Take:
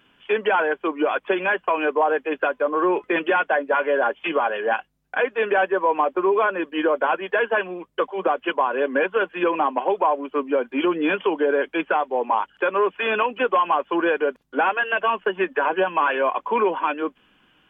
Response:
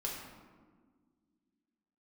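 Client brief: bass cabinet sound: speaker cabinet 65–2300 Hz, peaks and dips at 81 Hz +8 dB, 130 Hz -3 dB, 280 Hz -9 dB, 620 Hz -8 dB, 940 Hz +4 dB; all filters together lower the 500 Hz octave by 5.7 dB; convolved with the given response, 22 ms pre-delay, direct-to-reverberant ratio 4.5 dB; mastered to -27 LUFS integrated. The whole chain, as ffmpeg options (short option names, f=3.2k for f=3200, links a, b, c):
-filter_complex "[0:a]equalizer=f=500:t=o:g=-3.5,asplit=2[a][b];[1:a]atrim=start_sample=2205,adelay=22[c];[b][c]afir=irnorm=-1:irlink=0,volume=-6.5dB[d];[a][d]amix=inputs=2:normalize=0,highpass=f=65:w=0.5412,highpass=f=65:w=1.3066,equalizer=f=81:t=q:w=4:g=8,equalizer=f=130:t=q:w=4:g=-3,equalizer=f=280:t=q:w=4:g=-9,equalizer=f=620:t=q:w=4:g=-8,equalizer=f=940:t=q:w=4:g=4,lowpass=f=2.3k:w=0.5412,lowpass=f=2.3k:w=1.3066,volume=-4.5dB"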